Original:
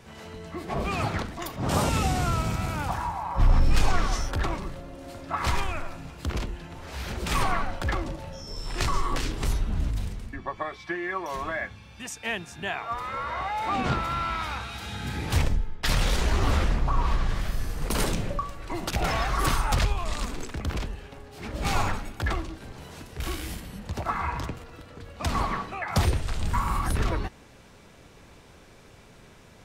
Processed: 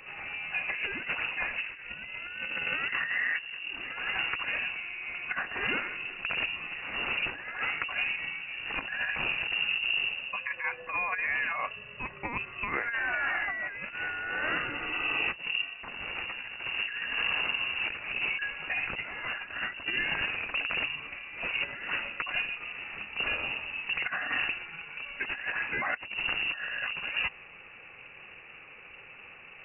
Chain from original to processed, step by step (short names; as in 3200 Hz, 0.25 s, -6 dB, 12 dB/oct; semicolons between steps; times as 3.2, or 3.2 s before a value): HPF 77 Hz 12 dB/oct; negative-ratio compressor -32 dBFS, ratio -0.5; inverted band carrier 2800 Hz